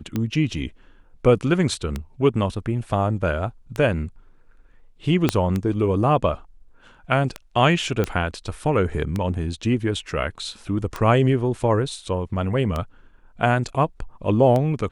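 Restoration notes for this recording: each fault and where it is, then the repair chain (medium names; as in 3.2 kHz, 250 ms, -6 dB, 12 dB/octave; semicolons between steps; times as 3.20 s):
tick 33 1/3 rpm -12 dBFS
5.29 s: pop -4 dBFS
8.04 s: pop -10 dBFS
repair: de-click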